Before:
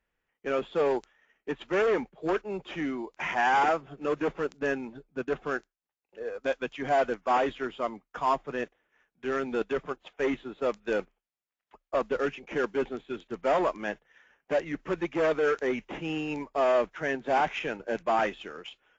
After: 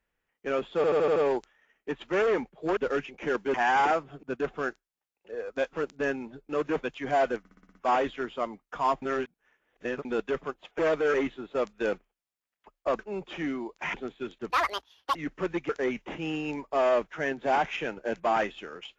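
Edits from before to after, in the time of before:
0.76 stutter 0.08 s, 6 plays
2.37–3.32 swap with 12.06–12.83
4.01–4.35 swap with 5.11–6.61
7.17 stutter 0.06 s, 7 plays
8.44–9.47 reverse
13.39–14.63 speed 190%
15.17–15.52 move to 10.21

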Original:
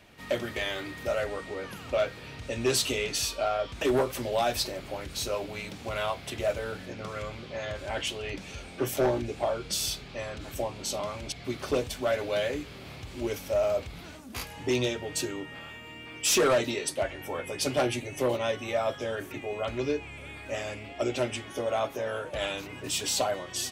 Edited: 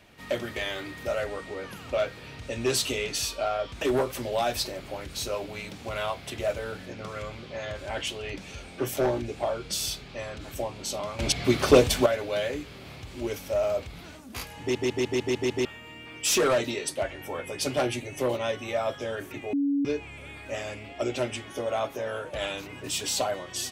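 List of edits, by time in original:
11.19–12.06 gain +11 dB
14.6 stutter in place 0.15 s, 7 plays
19.53–19.85 bleep 282 Hz -22 dBFS

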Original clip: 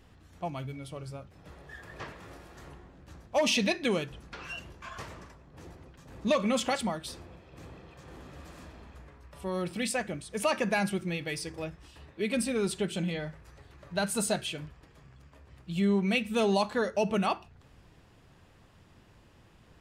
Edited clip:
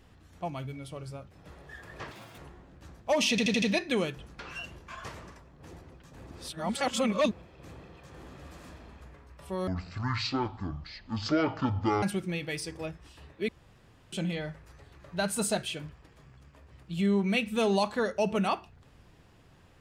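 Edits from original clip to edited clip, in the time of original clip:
2.11–2.64 speed 195%
3.56 stutter 0.08 s, 5 plays
6.25–7.25 reverse
9.61–10.81 speed 51%
12.27–12.91 room tone

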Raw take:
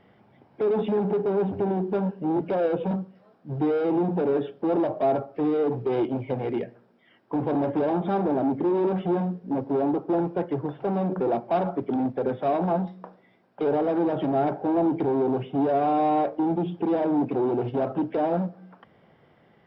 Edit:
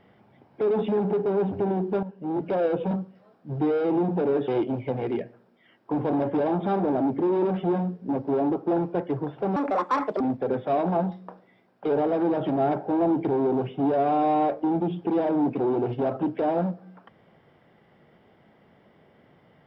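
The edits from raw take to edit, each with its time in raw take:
2.03–2.53 fade in, from -13 dB
4.48–5.9 cut
10.98–11.96 speed 152%

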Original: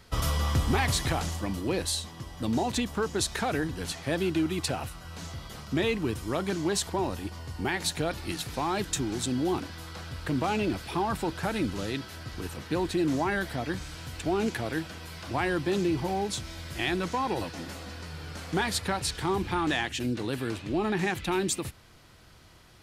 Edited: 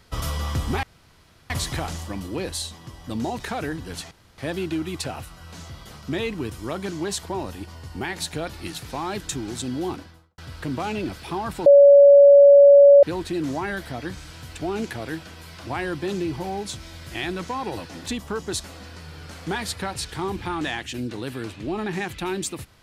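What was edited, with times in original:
0.83 insert room tone 0.67 s
2.73–3.31 move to 17.7
4.02 insert room tone 0.27 s
9.51–10.02 studio fade out
11.3–12.67 bleep 566 Hz -7 dBFS

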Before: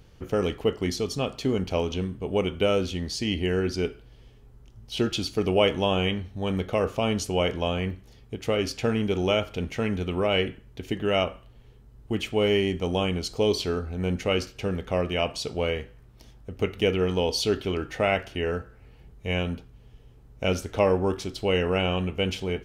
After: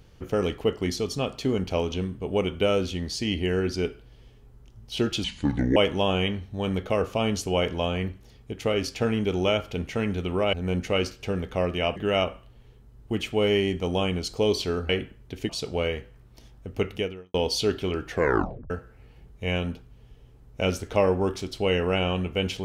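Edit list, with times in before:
5.24–5.59 speed 67%
10.36–10.96 swap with 13.89–15.32
16.74–17.17 fade out quadratic
17.93 tape stop 0.60 s

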